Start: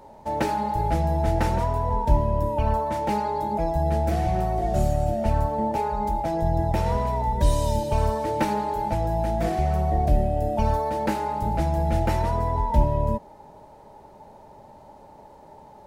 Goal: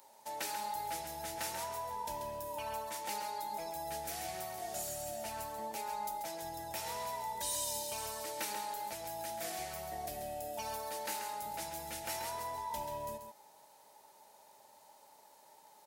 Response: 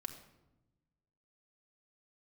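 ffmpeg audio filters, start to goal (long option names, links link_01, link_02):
-filter_complex "[0:a]aderivative,asplit=2[link_01][link_02];[link_02]alimiter=level_in=13dB:limit=-24dB:level=0:latency=1:release=215,volume=-13dB,volume=1.5dB[link_03];[link_01][link_03]amix=inputs=2:normalize=0,aecho=1:1:136:0.422,volume=-2dB"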